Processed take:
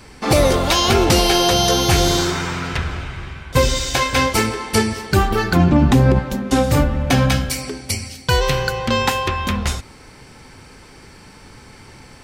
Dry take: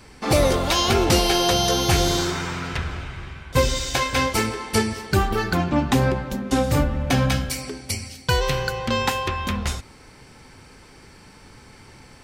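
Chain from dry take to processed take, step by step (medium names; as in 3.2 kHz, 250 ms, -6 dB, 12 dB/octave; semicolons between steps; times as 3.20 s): 5.56–6.19 s: bass shelf 410 Hz +9.5 dB; loudness maximiser +8 dB; trim -3.5 dB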